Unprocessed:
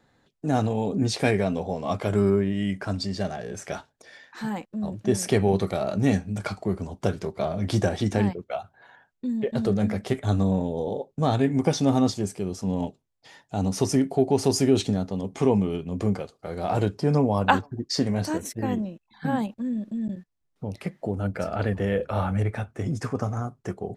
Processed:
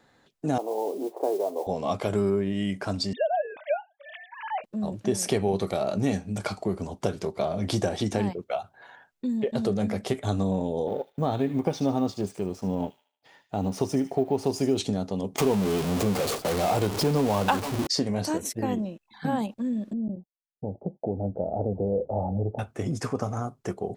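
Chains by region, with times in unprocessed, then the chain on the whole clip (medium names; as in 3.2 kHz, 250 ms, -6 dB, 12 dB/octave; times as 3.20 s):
0.58–1.67 s: Chebyshev band-pass 330–1000 Hz, order 3 + modulation noise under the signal 25 dB
3.13–4.64 s: formants replaced by sine waves + resonant low shelf 510 Hz -6.5 dB, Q 3
10.87–14.78 s: companding laws mixed up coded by A + peaking EQ 7.8 kHz -10.5 dB 2.2 oct + feedback echo behind a high-pass 76 ms, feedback 38%, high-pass 2.5 kHz, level -8.5 dB
15.36–17.87 s: jump at every zero crossing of -23.5 dBFS + gate with hold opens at -23 dBFS, closes at -27 dBFS
19.93–22.59 s: expander -45 dBFS + Chebyshev low-pass 820 Hz, order 5
whole clip: bass shelf 200 Hz -8 dB; compression 2:1, threshold -28 dBFS; dynamic bell 1.7 kHz, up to -5 dB, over -52 dBFS, Q 1.4; trim +4 dB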